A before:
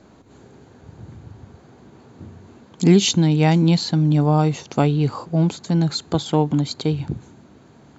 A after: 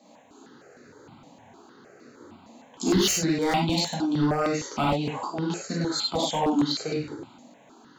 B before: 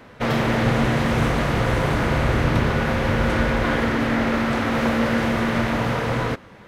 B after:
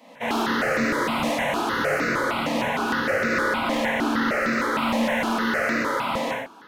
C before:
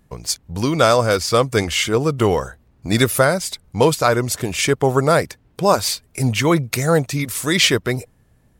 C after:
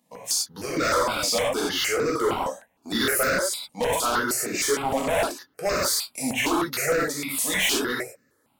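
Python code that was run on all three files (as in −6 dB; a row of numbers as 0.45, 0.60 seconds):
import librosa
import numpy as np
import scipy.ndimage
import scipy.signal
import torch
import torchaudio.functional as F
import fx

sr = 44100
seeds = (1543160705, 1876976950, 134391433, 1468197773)

y = scipy.signal.sosfilt(scipy.signal.butter(2, 260.0, 'highpass', fs=sr, output='sos'), x)
y = fx.low_shelf(y, sr, hz=390.0, db=-4.5)
y = fx.rev_gated(y, sr, seeds[0], gate_ms=130, shape='flat', drr_db=-5.0)
y = np.clip(y, -10.0 ** (-13.0 / 20.0), 10.0 ** (-13.0 / 20.0))
y = fx.phaser_held(y, sr, hz=6.5, low_hz=390.0, high_hz=3200.0)
y = librosa.util.normalize(y) * 10.0 ** (-12 / 20.0)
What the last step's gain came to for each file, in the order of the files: −1.5, −1.5, −4.0 decibels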